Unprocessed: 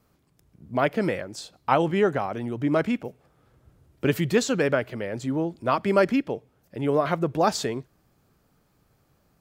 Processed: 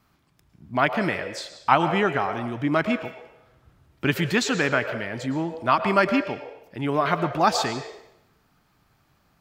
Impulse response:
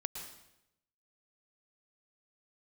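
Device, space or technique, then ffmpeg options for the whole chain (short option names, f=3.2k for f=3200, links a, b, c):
filtered reverb send: -filter_complex "[0:a]asplit=2[a][b];[b]highpass=f=490:w=0.5412,highpass=f=490:w=1.3066,lowpass=5.5k[c];[1:a]atrim=start_sample=2205[d];[c][d]afir=irnorm=-1:irlink=0,volume=1dB[e];[a][e]amix=inputs=2:normalize=0"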